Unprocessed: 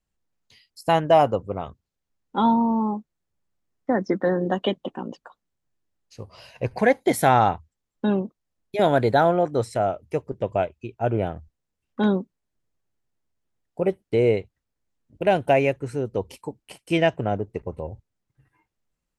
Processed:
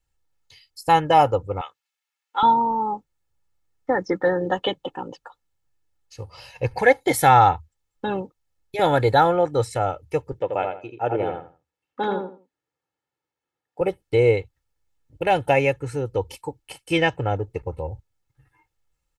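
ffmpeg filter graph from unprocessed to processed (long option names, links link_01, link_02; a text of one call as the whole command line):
ffmpeg -i in.wav -filter_complex "[0:a]asettb=1/sr,asplit=3[link_01][link_02][link_03];[link_01]atrim=end=1.614[link_04];[link_02]atrim=start=1.61:end=2.43,asetpts=PTS-STARTPTS,afade=type=in:duration=0.004:curve=qsin,afade=type=out:start_time=0.816:duration=0.004:curve=qsin,highpass=950,equalizer=frequency=2500:width=1.3:gain=6[link_05];[link_03]atrim=start=2.426[link_06];[link_04][link_05]acrossfade=duration=0.004:curve1=hsin:curve2=qsin[link_07];[link_07][link_06]acrossfade=duration=0.004:curve1=qsin:curve2=hsin,asettb=1/sr,asplit=3[link_08][link_09][link_10];[link_08]atrim=end=10.394[link_11];[link_09]atrim=start=10.39:end=13.81,asetpts=PTS-STARTPTS,afade=type=in:duration=0.004:curve=qsin,afade=type=out:start_time=3.416:duration=0.004:curve=qsin,highpass=220,highshelf=frequency=4900:gain=-11.5,asplit=2[link_12][link_13];[link_13]adelay=83,lowpass=frequency=2800:poles=1,volume=-4.5dB,asplit=2[link_14][link_15];[link_15]adelay=83,lowpass=frequency=2800:poles=1,volume=0.24,asplit=2[link_16][link_17];[link_17]adelay=83,lowpass=frequency=2800:poles=1,volume=0.24[link_18];[link_12][link_14][link_16][link_18]amix=inputs=4:normalize=0,atrim=end_sample=150822[link_19];[link_10]atrim=start=13.806[link_20];[link_11][link_19]acrossfade=duration=0.004:curve1=hsin:curve2=qsin[link_21];[link_21][link_20]acrossfade=duration=0.004:curve1=qsin:curve2=hsin,equalizer=frequency=390:width=3.3:gain=-9,aecho=1:1:2.3:0.76,volume=2dB" out.wav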